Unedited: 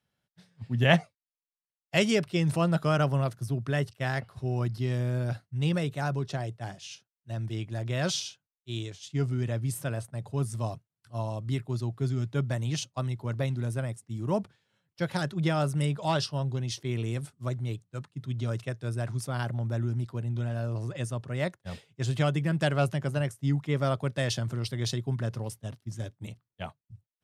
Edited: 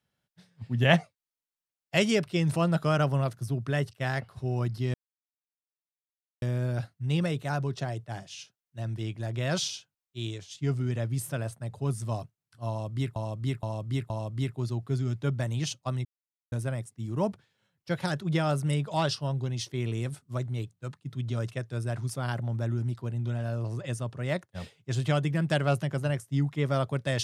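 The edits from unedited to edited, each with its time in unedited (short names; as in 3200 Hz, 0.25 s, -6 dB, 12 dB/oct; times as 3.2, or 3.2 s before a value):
4.94 insert silence 1.48 s
11.21–11.68 loop, 4 plays
13.16–13.63 mute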